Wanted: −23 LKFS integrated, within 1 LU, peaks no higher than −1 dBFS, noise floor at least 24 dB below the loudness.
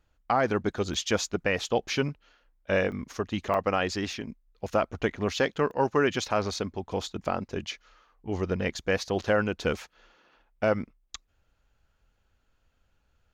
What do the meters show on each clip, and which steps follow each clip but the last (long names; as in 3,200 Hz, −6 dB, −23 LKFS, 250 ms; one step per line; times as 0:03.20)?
number of dropouts 5; longest dropout 1.1 ms; integrated loudness −29.0 LKFS; sample peak −12.5 dBFS; target loudness −23.0 LKFS
→ repair the gap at 0:00.94/0:02.92/0:03.54/0:04.13/0:05.71, 1.1 ms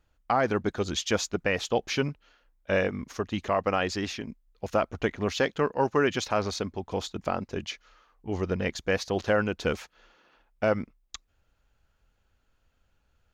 number of dropouts 0; integrated loudness −29.0 LKFS; sample peak −12.5 dBFS; target loudness −23.0 LKFS
→ level +6 dB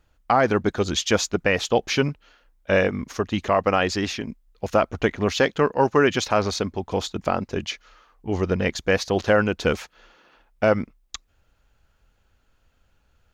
integrated loudness −23.0 LKFS; sample peak −6.5 dBFS; background noise floor −66 dBFS